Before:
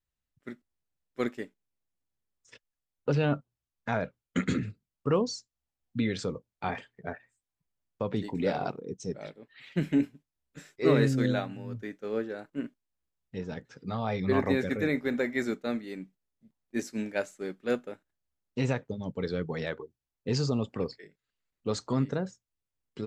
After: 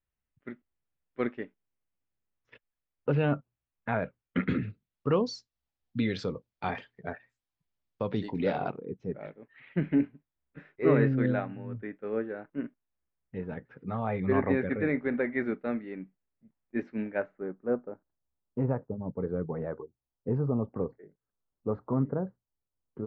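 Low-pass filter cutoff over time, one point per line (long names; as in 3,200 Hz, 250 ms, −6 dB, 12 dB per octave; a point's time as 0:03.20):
low-pass filter 24 dB per octave
0:04.46 2,800 Hz
0:05.16 5,000 Hz
0:08.21 5,000 Hz
0:08.96 2,300 Hz
0:17.03 2,300 Hz
0:17.63 1,200 Hz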